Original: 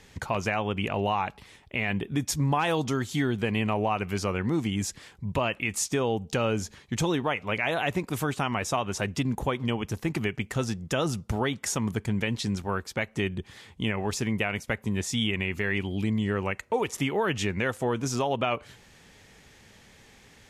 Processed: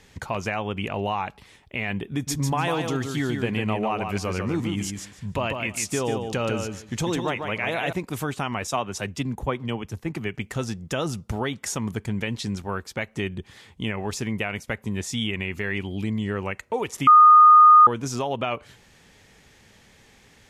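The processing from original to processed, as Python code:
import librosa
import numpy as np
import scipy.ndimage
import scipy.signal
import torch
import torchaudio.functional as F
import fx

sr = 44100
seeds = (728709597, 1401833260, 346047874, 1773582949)

y = fx.echo_feedback(x, sr, ms=147, feedback_pct=18, wet_db=-5.5, at=(2.12, 7.93))
y = fx.band_widen(y, sr, depth_pct=100, at=(8.67, 10.34))
y = fx.edit(y, sr, fx.bleep(start_s=17.07, length_s=0.8, hz=1230.0, db=-8.0), tone=tone)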